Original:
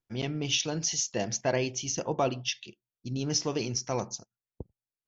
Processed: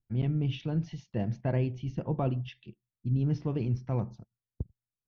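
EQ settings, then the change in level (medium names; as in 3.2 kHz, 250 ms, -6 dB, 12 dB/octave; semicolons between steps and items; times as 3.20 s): low-pass 6.6 kHz; distance through air 490 m; tone controls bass +15 dB, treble +2 dB; -5.5 dB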